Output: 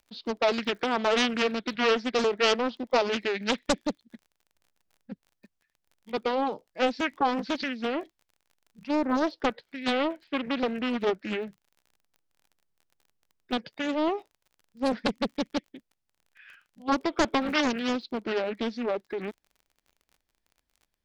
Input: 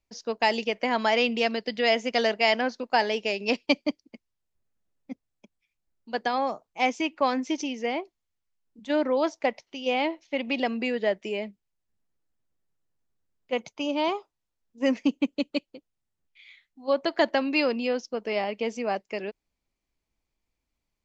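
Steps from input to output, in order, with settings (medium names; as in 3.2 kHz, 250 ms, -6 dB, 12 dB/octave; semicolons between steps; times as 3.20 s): crackle 37 per s -46 dBFS; formant shift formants -5 st; loudspeaker Doppler distortion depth 0.84 ms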